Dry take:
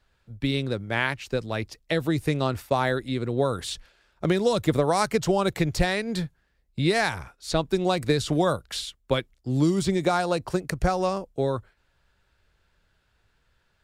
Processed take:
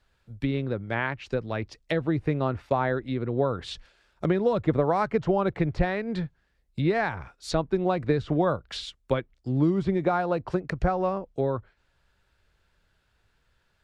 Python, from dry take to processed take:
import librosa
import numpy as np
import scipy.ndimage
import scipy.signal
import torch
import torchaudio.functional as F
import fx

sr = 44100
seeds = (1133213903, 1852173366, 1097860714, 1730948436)

y = fx.env_lowpass_down(x, sr, base_hz=1800.0, full_db=-23.0)
y = y * 10.0 ** (-1.0 / 20.0)